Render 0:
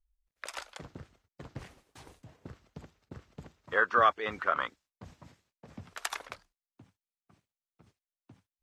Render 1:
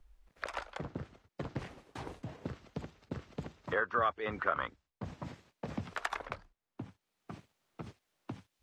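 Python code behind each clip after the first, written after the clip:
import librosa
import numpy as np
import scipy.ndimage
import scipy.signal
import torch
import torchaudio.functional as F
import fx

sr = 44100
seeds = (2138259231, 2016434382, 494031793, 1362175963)

y = fx.rider(x, sr, range_db=3, speed_s=0.5)
y = fx.lowpass(y, sr, hz=1300.0, slope=6)
y = fx.band_squash(y, sr, depth_pct=70)
y = y * 10.0 ** (6.5 / 20.0)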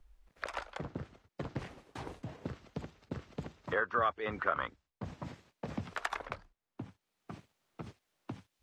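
y = x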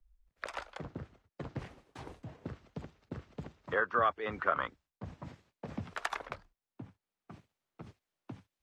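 y = fx.band_widen(x, sr, depth_pct=40)
y = y * 10.0 ** (-1.5 / 20.0)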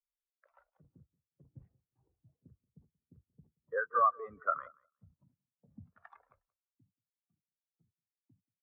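y = fx.transient(x, sr, attack_db=1, sustain_db=7)
y = fx.echo_feedback(y, sr, ms=180, feedback_pct=37, wet_db=-10.5)
y = fx.spectral_expand(y, sr, expansion=2.5)
y = y * 10.0 ** (-4.5 / 20.0)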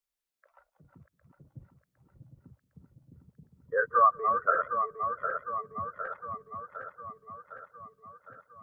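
y = fx.reverse_delay_fb(x, sr, ms=379, feedback_pct=76, wet_db=-6.0)
y = y * 10.0 ** (5.5 / 20.0)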